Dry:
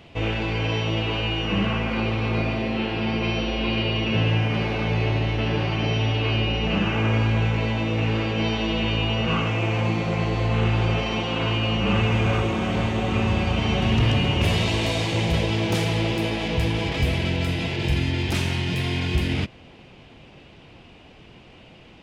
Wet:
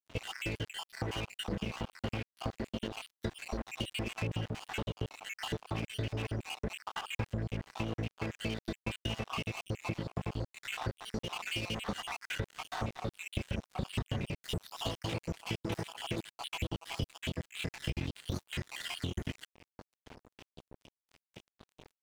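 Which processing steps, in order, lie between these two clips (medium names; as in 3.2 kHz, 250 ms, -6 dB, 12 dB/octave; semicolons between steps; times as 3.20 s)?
random holes in the spectrogram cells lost 67%; 11.52–12.06 s: tone controls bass -4 dB, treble +8 dB; compression 4:1, threshold -41 dBFS, peak gain reduction 20 dB; crossover distortion -45.5 dBFS; trim +8 dB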